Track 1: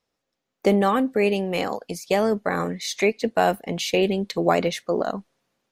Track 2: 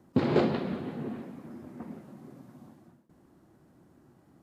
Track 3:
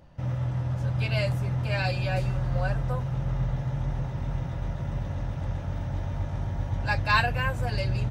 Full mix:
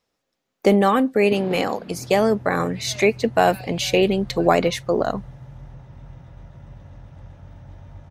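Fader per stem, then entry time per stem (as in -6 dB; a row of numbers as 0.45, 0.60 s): +3.0, -7.5, -11.0 dB; 0.00, 1.15, 1.75 s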